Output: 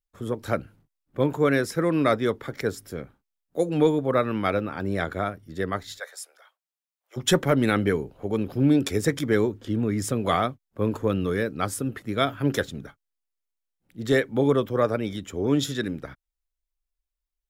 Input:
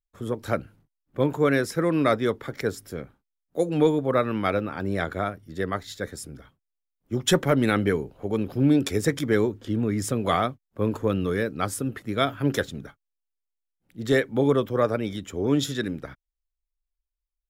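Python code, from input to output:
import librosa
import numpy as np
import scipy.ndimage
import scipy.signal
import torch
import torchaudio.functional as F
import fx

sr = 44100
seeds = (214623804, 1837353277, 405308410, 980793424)

y = fx.steep_highpass(x, sr, hz=590.0, slope=36, at=(5.98, 7.16), fade=0.02)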